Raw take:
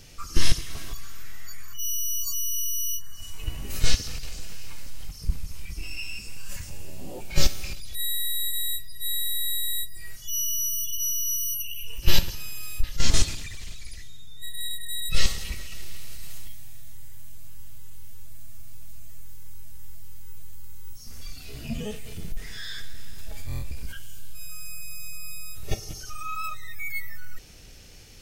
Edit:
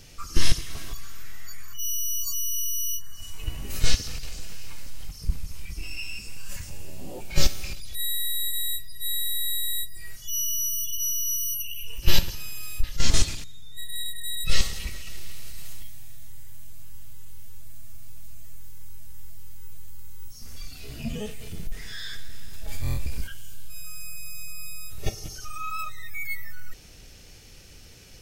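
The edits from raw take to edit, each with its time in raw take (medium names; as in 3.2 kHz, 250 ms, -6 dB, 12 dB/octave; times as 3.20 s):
13.44–14.09 s: delete
23.33–23.89 s: gain +4.5 dB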